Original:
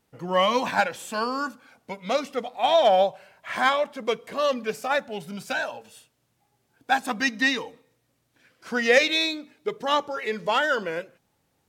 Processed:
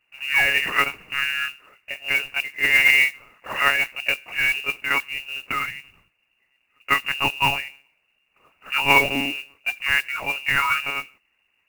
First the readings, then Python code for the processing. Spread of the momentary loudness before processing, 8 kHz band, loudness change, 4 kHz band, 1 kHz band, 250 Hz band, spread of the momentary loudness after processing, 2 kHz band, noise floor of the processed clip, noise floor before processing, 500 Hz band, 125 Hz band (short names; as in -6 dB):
14 LU, +2.5 dB, +4.0 dB, +3.5 dB, -2.0 dB, -4.5 dB, 13 LU, +8.0 dB, -70 dBFS, -72 dBFS, -11.0 dB, +4.5 dB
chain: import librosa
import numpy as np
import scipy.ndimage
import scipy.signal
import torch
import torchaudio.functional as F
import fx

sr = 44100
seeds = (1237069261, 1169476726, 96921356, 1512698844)

y = fx.lpc_monotone(x, sr, seeds[0], pitch_hz=140.0, order=10)
y = fx.freq_invert(y, sr, carrier_hz=2800)
y = fx.mod_noise(y, sr, seeds[1], snr_db=18)
y = y * 10.0 ** (2.0 / 20.0)